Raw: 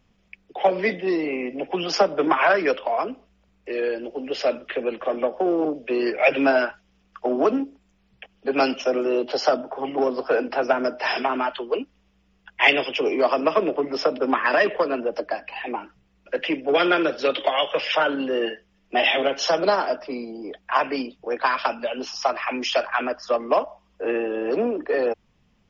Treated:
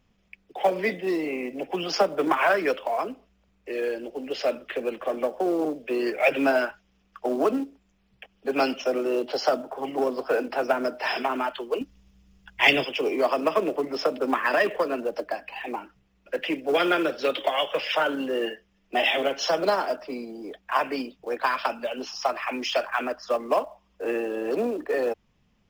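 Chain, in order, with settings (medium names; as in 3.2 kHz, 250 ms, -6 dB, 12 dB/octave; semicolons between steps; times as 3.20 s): 11.81–12.85 s: tone controls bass +11 dB, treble +10 dB; in parallel at -6.5 dB: short-mantissa float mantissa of 2-bit; on the sum: trim -6.5 dB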